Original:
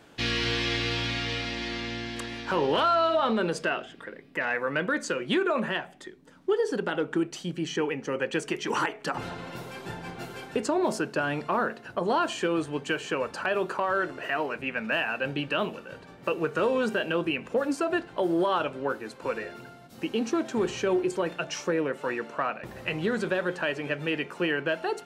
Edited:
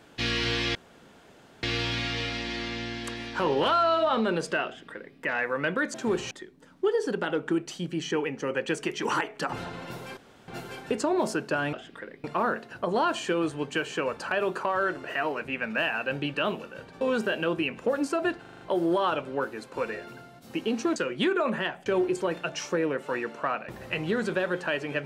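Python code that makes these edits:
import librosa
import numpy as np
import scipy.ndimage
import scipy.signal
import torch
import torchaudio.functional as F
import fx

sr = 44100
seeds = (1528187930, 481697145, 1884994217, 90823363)

y = fx.edit(x, sr, fx.insert_room_tone(at_s=0.75, length_s=0.88),
    fx.duplicate(start_s=3.78, length_s=0.51, to_s=11.38),
    fx.swap(start_s=5.06, length_s=0.9, other_s=20.44, other_length_s=0.37),
    fx.room_tone_fill(start_s=9.82, length_s=0.31),
    fx.cut(start_s=16.15, length_s=0.54),
    fx.stutter(start_s=18.09, slice_s=0.04, count=6), tone=tone)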